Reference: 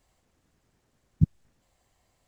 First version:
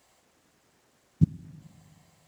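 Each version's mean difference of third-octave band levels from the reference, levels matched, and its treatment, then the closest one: 3.0 dB: HPF 330 Hz 6 dB/oct; spring tank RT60 2.2 s, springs 39/43/53 ms, DRR 18 dB; gain +8.5 dB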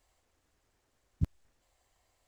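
7.0 dB: bell 170 Hz -12 dB 1.3 oct; crackling interface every 0.36 s, samples 128, repeat, from 0.88; gain -2 dB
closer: first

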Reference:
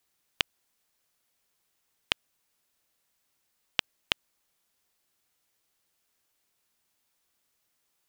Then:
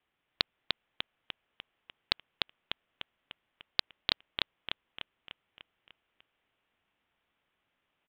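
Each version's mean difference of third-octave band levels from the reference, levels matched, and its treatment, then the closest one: 5.5 dB: steep low-pass 3400 Hz 72 dB/oct; on a send: feedback echo 0.298 s, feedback 52%, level -3 dB; on the sum: Doppler distortion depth 0.42 ms; gain +1 dB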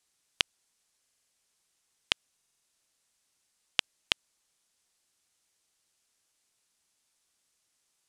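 3.0 dB: LPF 11000 Hz 24 dB/oct; bell 7500 Hz +7 dB 2.1 oct; stuck buffer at 1.02/2.36, samples 2048, times 5; gain -2.5 dB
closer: second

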